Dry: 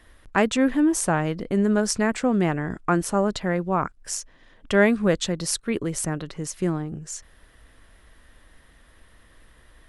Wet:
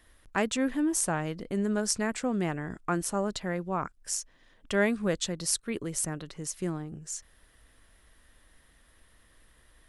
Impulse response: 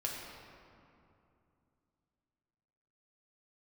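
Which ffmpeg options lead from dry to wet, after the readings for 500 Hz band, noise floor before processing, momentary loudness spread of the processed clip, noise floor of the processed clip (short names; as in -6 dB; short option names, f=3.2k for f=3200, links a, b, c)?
-8.0 dB, -55 dBFS, 10 LU, -62 dBFS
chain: -af "highshelf=f=4.5k:g=8,volume=-8dB"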